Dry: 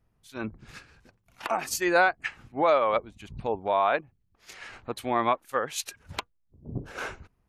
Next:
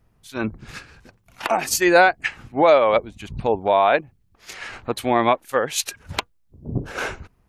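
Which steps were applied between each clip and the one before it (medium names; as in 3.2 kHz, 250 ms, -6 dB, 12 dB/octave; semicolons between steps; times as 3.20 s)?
dynamic bell 1.2 kHz, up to -6 dB, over -39 dBFS, Q 2.2; trim +9 dB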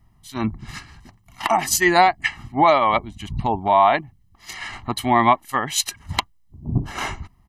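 comb 1 ms, depth 88%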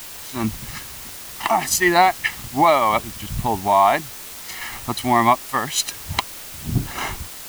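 word length cut 6-bit, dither triangular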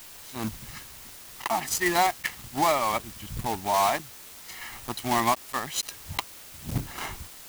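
block-companded coder 3-bit; trim -8.5 dB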